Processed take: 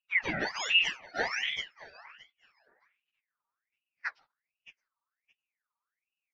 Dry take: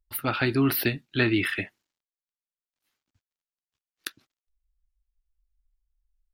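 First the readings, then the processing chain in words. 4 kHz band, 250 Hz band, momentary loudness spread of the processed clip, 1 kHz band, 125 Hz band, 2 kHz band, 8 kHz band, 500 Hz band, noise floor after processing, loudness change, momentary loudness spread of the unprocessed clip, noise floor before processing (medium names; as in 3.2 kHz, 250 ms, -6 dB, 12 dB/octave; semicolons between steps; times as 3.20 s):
+4.5 dB, -18.5 dB, 15 LU, -4.0 dB, -20.5 dB, 0.0 dB, -4.0 dB, -10.5 dB, under -85 dBFS, -4.5 dB, 16 LU, under -85 dBFS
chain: spectrum inverted on a logarithmic axis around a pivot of 1.1 kHz; in parallel at -9 dB: saturation -24 dBFS, distortion -5 dB; on the sum: high-order bell 3.4 kHz +13.5 dB 1.2 oct; low-pass sweep 1.3 kHz -> 4.9 kHz, 2.85–5.67 s; on a send: feedback delay 619 ms, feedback 16%, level -19 dB; on the sum: ring modulator with a swept carrier 1.9 kHz, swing 45%, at 1.3 Hz; trim -5.5 dB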